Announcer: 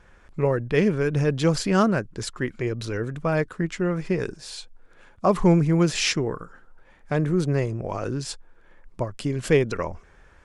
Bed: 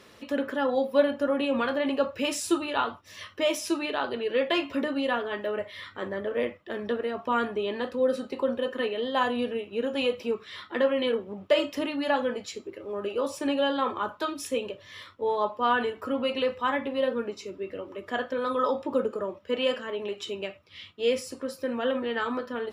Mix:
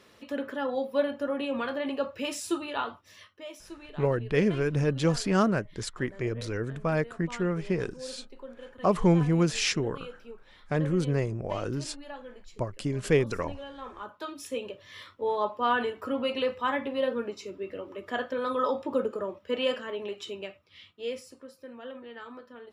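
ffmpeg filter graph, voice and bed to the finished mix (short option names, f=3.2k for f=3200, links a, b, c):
-filter_complex "[0:a]adelay=3600,volume=-4dB[a];[1:a]volume=11dB,afade=t=out:st=3.05:d=0.28:silence=0.237137,afade=t=in:st=13.75:d=1.27:silence=0.16788,afade=t=out:st=19.78:d=1.74:silence=0.223872[b];[a][b]amix=inputs=2:normalize=0"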